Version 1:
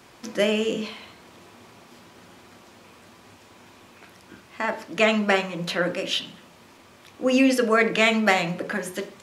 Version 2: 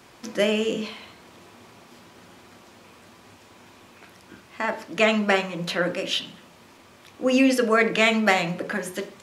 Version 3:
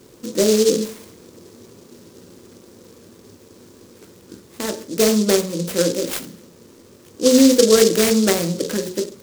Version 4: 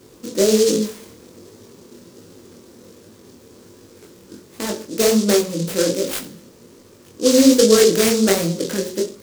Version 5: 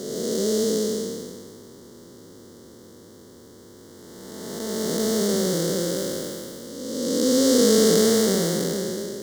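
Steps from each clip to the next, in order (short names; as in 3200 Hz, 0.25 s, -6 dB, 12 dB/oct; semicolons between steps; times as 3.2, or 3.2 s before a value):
nothing audible
resonant low shelf 580 Hz +6.5 dB, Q 3; noise-modulated delay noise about 5400 Hz, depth 0.11 ms; gain -1 dB
chorus 1.3 Hz, delay 18.5 ms, depth 7.8 ms; gain +3.5 dB
time blur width 0.733 s; Butterworth band-stop 2500 Hz, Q 2.8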